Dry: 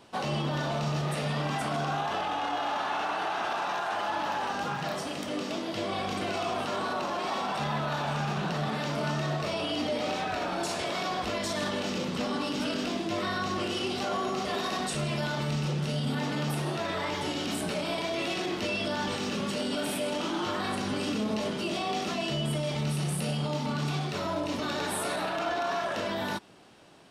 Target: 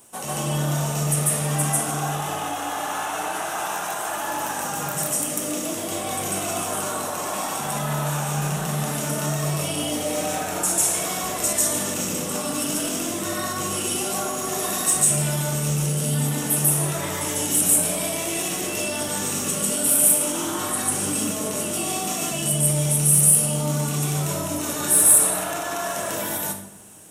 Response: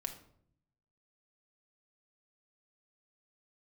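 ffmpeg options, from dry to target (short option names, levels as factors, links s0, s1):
-filter_complex "[0:a]aexciter=amount=16:drive=5.6:freq=6800,asoftclip=type=tanh:threshold=0.531,asplit=2[s0][s1];[1:a]atrim=start_sample=2205,asetrate=30429,aresample=44100,adelay=145[s2];[s1][s2]afir=irnorm=-1:irlink=0,volume=1.33[s3];[s0][s3]amix=inputs=2:normalize=0,volume=0.75"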